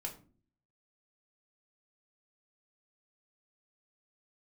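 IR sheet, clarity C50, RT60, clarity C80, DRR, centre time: 12.0 dB, 0.40 s, 16.5 dB, −0.5 dB, 14 ms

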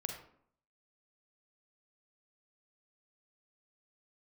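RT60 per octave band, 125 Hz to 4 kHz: 0.70, 0.70, 0.65, 0.65, 0.50, 0.35 seconds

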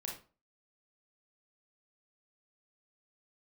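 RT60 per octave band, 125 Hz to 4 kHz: 0.40, 0.40, 0.40, 0.35, 0.30, 0.25 seconds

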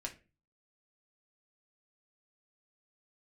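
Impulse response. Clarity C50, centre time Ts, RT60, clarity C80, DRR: 13.5 dB, 11 ms, 0.30 s, 20.5 dB, 0.5 dB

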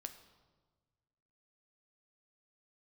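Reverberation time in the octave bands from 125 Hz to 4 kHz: 2.0, 1.7, 1.5, 1.3, 1.0, 1.0 seconds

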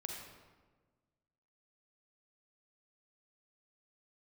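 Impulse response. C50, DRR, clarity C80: 1.5 dB, 0.5 dB, 3.5 dB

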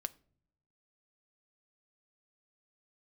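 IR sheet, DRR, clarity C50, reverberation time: 11.0 dB, 22.5 dB, non-exponential decay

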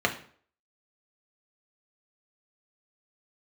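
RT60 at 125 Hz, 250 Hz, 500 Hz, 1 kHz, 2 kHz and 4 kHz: 0.50, 0.50, 0.55, 0.50, 0.45, 0.40 seconds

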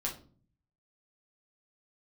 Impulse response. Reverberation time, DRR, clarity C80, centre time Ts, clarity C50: 0.45 s, −3.0 dB, 16.0 dB, 20 ms, 10.0 dB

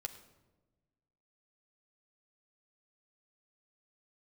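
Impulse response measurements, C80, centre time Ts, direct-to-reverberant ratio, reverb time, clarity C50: 13.0 dB, 11 ms, 5.5 dB, 1.2 s, 11.5 dB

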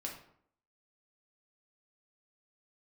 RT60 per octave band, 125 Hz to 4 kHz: 0.60, 0.70, 0.65, 0.65, 0.50, 0.40 seconds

